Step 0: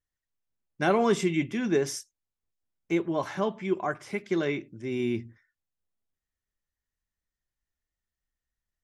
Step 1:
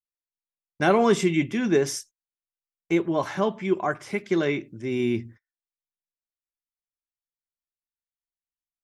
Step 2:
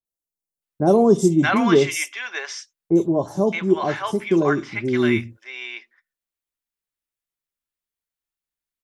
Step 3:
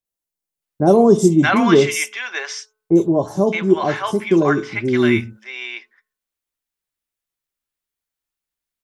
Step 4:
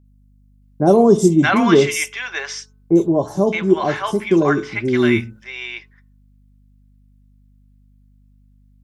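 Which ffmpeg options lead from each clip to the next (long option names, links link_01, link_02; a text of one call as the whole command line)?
ffmpeg -i in.wav -af "agate=range=-26dB:threshold=-49dB:ratio=16:detection=peak,volume=4dB" out.wav
ffmpeg -i in.wav -filter_complex "[0:a]acrossover=split=820|5400[link_01][link_02][link_03];[link_03]adelay=50[link_04];[link_02]adelay=620[link_05];[link_01][link_05][link_04]amix=inputs=3:normalize=0,volume=6dB" out.wav
ffmpeg -i in.wav -af "bandreject=frequency=215.6:width_type=h:width=4,bandreject=frequency=431.2:width_type=h:width=4,bandreject=frequency=646.8:width_type=h:width=4,bandreject=frequency=862.4:width_type=h:width=4,bandreject=frequency=1078:width_type=h:width=4,bandreject=frequency=1293.6:width_type=h:width=4,bandreject=frequency=1509.2:width_type=h:width=4,volume=3.5dB" out.wav
ffmpeg -i in.wav -af "aeval=exprs='val(0)+0.00282*(sin(2*PI*50*n/s)+sin(2*PI*2*50*n/s)/2+sin(2*PI*3*50*n/s)/3+sin(2*PI*4*50*n/s)/4+sin(2*PI*5*50*n/s)/5)':channel_layout=same" out.wav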